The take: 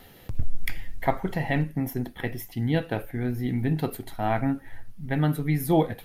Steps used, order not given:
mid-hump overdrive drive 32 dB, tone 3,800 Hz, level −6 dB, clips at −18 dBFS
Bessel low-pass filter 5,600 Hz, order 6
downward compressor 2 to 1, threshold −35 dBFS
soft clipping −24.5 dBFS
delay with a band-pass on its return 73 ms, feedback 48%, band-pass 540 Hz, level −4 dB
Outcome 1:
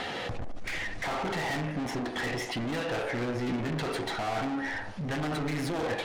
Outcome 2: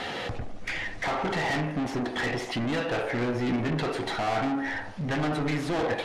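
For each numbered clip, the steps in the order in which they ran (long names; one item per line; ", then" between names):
Bessel low-pass filter, then mid-hump overdrive, then soft clipping, then downward compressor, then delay with a band-pass on its return
downward compressor, then mid-hump overdrive, then Bessel low-pass filter, then soft clipping, then delay with a band-pass on its return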